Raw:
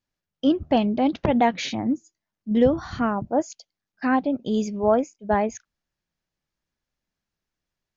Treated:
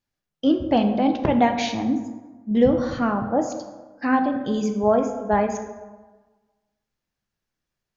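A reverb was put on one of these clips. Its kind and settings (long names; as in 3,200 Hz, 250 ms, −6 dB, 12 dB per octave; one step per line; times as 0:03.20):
dense smooth reverb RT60 1.3 s, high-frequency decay 0.5×, DRR 5 dB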